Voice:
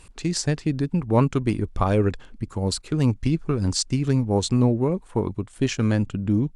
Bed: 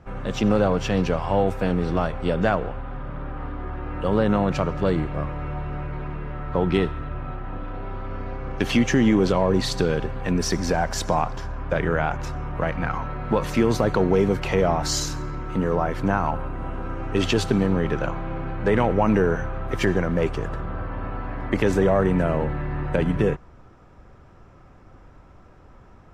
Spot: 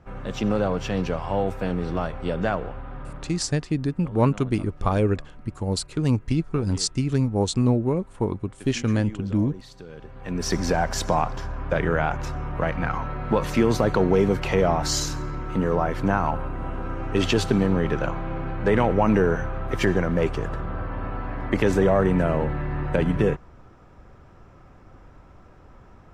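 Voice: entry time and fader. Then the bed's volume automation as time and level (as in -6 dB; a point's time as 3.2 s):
3.05 s, -1.0 dB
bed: 3.09 s -3.5 dB
3.69 s -20.5 dB
9.86 s -20.5 dB
10.54 s 0 dB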